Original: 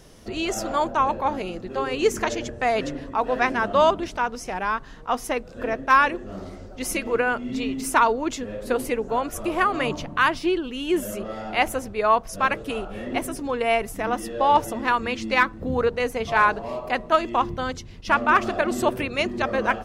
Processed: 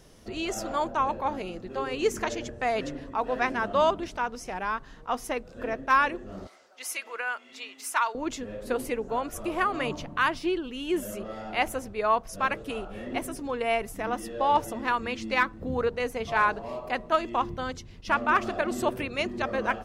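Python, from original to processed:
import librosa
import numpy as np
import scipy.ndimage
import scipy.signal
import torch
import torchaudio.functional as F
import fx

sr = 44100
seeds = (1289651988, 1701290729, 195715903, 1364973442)

y = fx.highpass(x, sr, hz=1000.0, slope=12, at=(6.47, 8.15))
y = F.gain(torch.from_numpy(y), -5.0).numpy()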